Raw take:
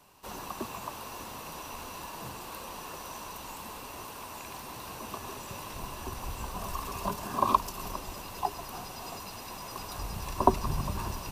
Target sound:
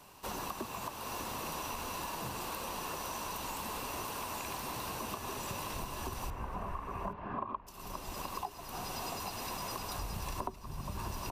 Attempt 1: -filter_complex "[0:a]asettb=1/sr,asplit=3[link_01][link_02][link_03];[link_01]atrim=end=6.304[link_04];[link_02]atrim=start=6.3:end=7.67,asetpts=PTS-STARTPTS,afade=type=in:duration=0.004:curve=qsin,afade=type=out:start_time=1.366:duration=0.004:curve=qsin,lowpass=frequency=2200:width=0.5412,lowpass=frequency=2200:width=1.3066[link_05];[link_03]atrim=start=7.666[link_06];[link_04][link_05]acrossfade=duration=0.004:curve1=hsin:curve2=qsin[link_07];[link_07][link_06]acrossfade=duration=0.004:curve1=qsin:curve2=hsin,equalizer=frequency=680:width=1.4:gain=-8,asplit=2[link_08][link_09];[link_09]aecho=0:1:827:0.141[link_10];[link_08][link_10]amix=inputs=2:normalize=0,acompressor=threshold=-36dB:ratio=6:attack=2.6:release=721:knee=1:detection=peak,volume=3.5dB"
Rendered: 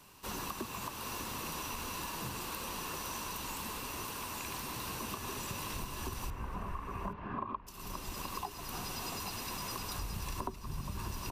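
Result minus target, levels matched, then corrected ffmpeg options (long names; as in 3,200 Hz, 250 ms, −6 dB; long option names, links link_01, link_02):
500 Hz band −3.0 dB
-filter_complex "[0:a]asettb=1/sr,asplit=3[link_01][link_02][link_03];[link_01]atrim=end=6.304[link_04];[link_02]atrim=start=6.3:end=7.67,asetpts=PTS-STARTPTS,afade=type=in:duration=0.004:curve=qsin,afade=type=out:start_time=1.366:duration=0.004:curve=qsin,lowpass=frequency=2200:width=0.5412,lowpass=frequency=2200:width=1.3066[link_05];[link_03]atrim=start=7.666[link_06];[link_04][link_05]acrossfade=duration=0.004:curve1=hsin:curve2=qsin[link_07];[link_07][link_06]acrossfade=duration=0.004:curve1=qsin:curve2=hsin,asplit=2[link_08][link_09];[link_09]aecho=0:1:827:0.141[link_10];[link_08][link_10]amix=inputs=2:normalize=0,acompressor=threshold=-36dB:ratio=6:attack=2.6:release=721:knee=1:detection=peak,volume=3.5dB"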